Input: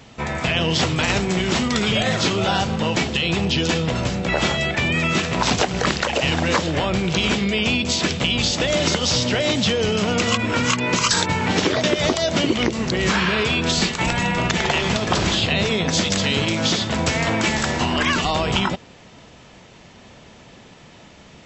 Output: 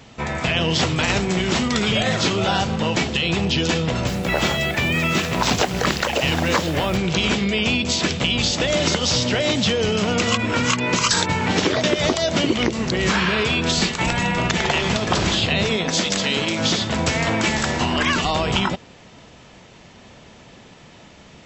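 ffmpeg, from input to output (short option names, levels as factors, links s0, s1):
-filter_complex "[0:a]asplit=3[s0][s1][s2];[s0]afade=t=out:st=4.06:d=0.02[s3];[s1]acrusher=bits=5:mix=0:aa=0.5,afade=t=in:st=4.06:d=0.02,afade=t=out:st=6.96:d=0.02[s4];[s2]afade=t=in:st=6.96:d=0.02[s5];[s3][s4][s5]amix=inputs=3:normalize=0,asettb=1/sr,asplit=3[s6][s7][s8];[s6]atrim=end=15.764[s9];[s7]atrim=start=15.76:end=16.59,asetpts=PTS-STARTPTS,afade=t=in:d=0.004:c=qsin,afade=t=out:st=0.826:d=0.004:c=qsin,equalizer=f=87:t=o:w=1.2:g=-12.5[s10];[s8]atrim=start=16.586[s11];[s9][s10]acrossfade=d=0.004:c1=hsin:c2=qsin[s12];[s12][s11]acrossfade=d=0.004:c1=qsin:c2=hsin"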